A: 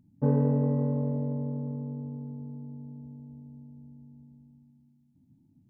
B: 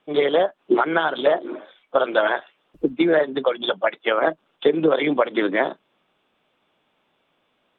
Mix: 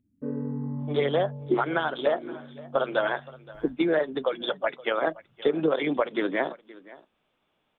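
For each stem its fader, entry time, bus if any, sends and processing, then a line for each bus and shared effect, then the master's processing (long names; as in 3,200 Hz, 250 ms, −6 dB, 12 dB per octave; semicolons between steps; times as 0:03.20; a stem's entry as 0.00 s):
−4.0 dB, 0.00 s, no send, no echo send, frequency shifter mixed with the dry sound −0.5 Hz
−6.5 dB, 0.80 s, no send, echo send −20.5 dB, low-shelf EQ 86 Hz +11.5 dB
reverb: not used
echo: single-tap delay 521 ms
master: no processing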